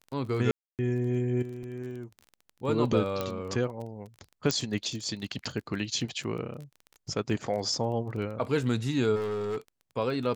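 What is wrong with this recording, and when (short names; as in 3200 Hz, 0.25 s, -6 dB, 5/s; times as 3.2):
crackle 17/s -36 dBFS
0.51–0.79 gap 0.278 s
1.63 gap 2.6 ms
3.21 pop -16 dBFS
4.51 pop -11 dBFS
9.15–9.58 clipped -28.5 dBFS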